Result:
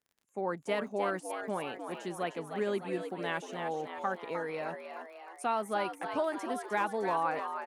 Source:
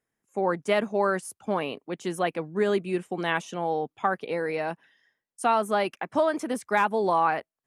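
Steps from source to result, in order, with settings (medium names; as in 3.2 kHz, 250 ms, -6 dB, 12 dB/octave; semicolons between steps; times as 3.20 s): frequency-shifting echo 306 ms, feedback 55%, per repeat +83 Hz, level -7.5 dB; crackle 37 per s -42 dBFS; trim -8.5 dB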